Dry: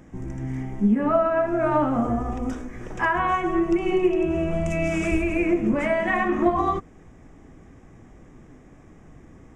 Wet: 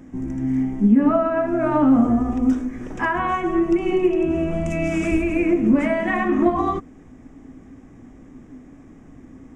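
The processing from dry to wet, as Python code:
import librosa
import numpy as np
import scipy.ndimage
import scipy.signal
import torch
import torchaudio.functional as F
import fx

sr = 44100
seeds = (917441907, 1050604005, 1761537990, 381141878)

y = fx.peak_eq(x, sr, hz=260.0, db=12.5, octaves=0.39)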